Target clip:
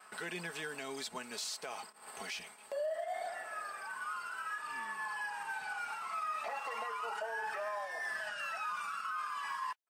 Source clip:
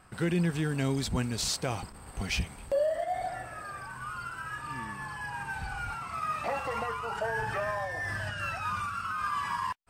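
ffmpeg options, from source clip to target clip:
-af "highpass=590,acompressor=mode=upward:threshold=-37dB:ratio=2.5,agate=range=-33dB:threshold=-42dB:ratio=3:detection=peak,aecho=1:1:4.7:0.48,alimiter=level_in=4dB:limit=-24dB:level=0:latency=1:release=140,volume=-4dB,volume=-2.5dB"

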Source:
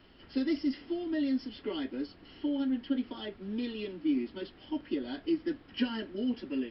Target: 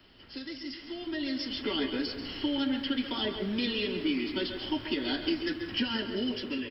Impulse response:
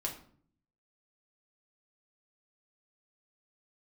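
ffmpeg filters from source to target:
-filter_complex "[0:a]acrossover=split=170|870[a][b][c];[a]acompressor=threshold=-54dB:ratio=4[d];[b]acompressor=threshold=-43dB:ratio=4[e];[c]acompressor=threshold=-46dB:ratio=4[f];[d][e][f]amix=inputs=3:normalize=0,highshelf=f=3k:g=9.5,asplit=2[g][h];[h]adelay=134,lowpass=f=2k:p=1,volume=-10.5dB,asplit=2[i][j];[j]adelay=134,lowpass=f=2k:p=1,volume=0.46,asplit=2[k][l];[l]adelay=134,lowpass=f=2k:p=1,volume=0.46,asplit=2[m][n];[n]adelay=134,lowpass=f=2k:p=1,volume=0.46,asplit=2[o][p];[p]adelay=134,lowpass=f=2k:p=1,volume=0.46[q];[g][i][k][m][o][q]amix=inputs=6:normalize=0,dynaudnorm=f=280:g=9:m=11.5dB,asplit=2[r][s];[s]equalizer=f=110:w=3.6:g=14.5[t];[1:a]atrim=start_sample=2205,adelay=136[u];[t][u]afir=irnorm=-1:irlink=0,volume=-10.5dB[v];[r][v]amix=inputs=2:normalize=0,volume=-1.5dB"

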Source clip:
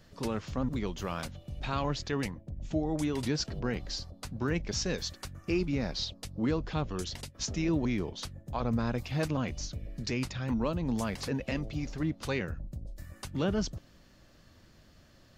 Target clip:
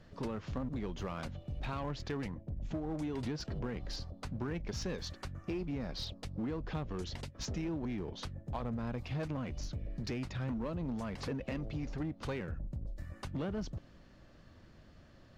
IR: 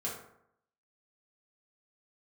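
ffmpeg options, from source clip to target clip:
-filter_complex "[0:a]aemphasis=mode=reproduction:type=75kf,acompressor=threshold=-33dB:ratio=12,asplit=2[a][b];[b]aeval=exprs='0.015*(abs(mod(val(0)/0.015+3,4)-2)-1)':c=same,volume=-9dB[c];[a][c]amix=inputs=2:normalize=0,volume=-1.5dB"

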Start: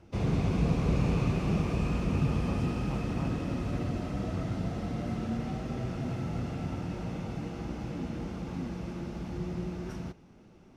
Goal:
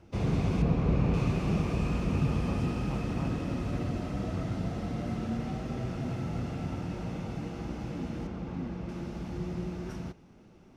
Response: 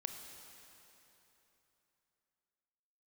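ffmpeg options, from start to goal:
-filter_complex "[0:a]asettb=1/sr,asplit=3[a][b][c];[a]atrim=end=0.624[d];[b]atrim=start=0.62:end=1.14,asetpts=PTS-STARTPTS,afade=t=in:d=0.004:c=qsin,afade=t=out:st=0.516:d=0.004:c=qsin,aemphasis=mode=reproduction:type=75fm[e];[c]atrim=start=1.136[f];[d][e]acrossfade=d=0.004:c1=hsin:c2=qsin[g];[g][f]acrossfade=d=0.004:c1=qsin:c2=hsin,asettb=1/sr,asplit=3[h][i][j];[h]atrim=end=8.274[k];[i]atrim=start=8.27:end=8.89,asetpts=PTS-STARTPTS,afade=t=in:d=0.004:c=qsin,afade=t=out:st=0.616:d=0.004:c=qsin,lowpass=f=2.6k:p=1[l];[j]atrim=start=8.886[m];[k][l]acrossfade=d=0.004:c1=hsin:c2=qsin[n];[n][m]acrossfade=d=0.004:c1=qsin:c2=hsin"

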